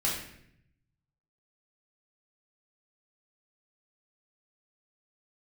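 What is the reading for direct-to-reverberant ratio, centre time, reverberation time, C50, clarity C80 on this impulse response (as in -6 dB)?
-6.5 dB, 47 ms, 0.70 s, 3.5 dB, 6.5 dB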